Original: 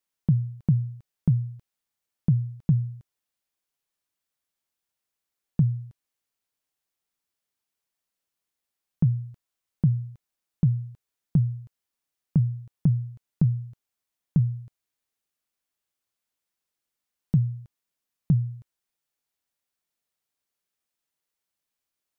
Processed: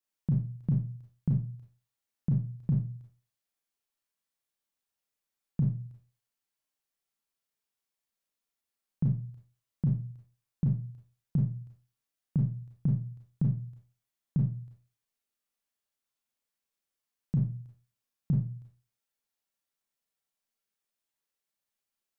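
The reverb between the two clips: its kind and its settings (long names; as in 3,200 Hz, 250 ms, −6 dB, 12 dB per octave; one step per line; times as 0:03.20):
four-comb reverb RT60 0.35 s, combs from 28 ms, DRR −2 dB
level −7.5 dB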